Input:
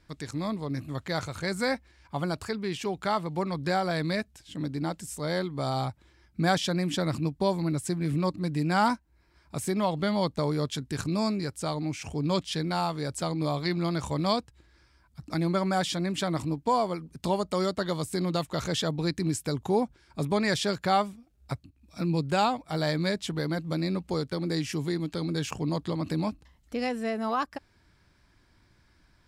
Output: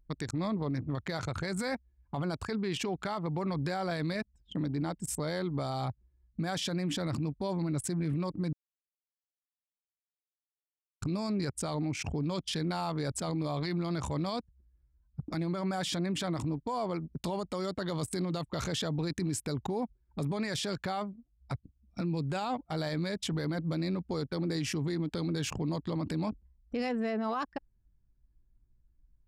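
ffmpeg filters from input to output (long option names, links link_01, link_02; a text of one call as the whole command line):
ffmpeg -i in.wav -filter_complex "[0:a]asplit=3[link_01][link_02][link_03];[link_01]atrim=end=8.53,asetpts=PTS-STARTPTS,afade=type=out:start_time=8.526:duration=0.004:curve=hsin[link_04];[link_02]atrim=start=8.53:end=11.02,asetpts=PTS-STARTPTS,volume=0[link_05];[link_03]atrim=start=11.02,asetpts=PTS-STARTPTS,afade=type=in:duration=0.004:curve=hsin[link_06];[link_04][link_05][link_06]concat=n=3:v=0:a=1,anlmdn=0.631,acompressor=threshold=-32dB:ratio=2.5,alimiter=level_in=7dB:limit=-24dB:level=0:latency=1:release=17,volume=-7dB,volume=5.5dB" out.wav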